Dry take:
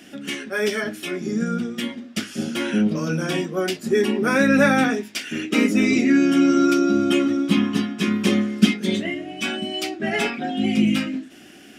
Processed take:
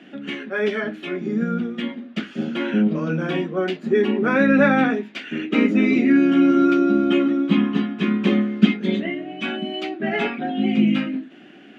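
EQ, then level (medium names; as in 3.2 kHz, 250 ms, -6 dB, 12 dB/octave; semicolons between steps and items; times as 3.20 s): high-pass 140 Hz 24 dB/octave; distance through air 230 m; peaking EQ 5.3 kHz -10.5 dB 0.34 oct; +1.5 dB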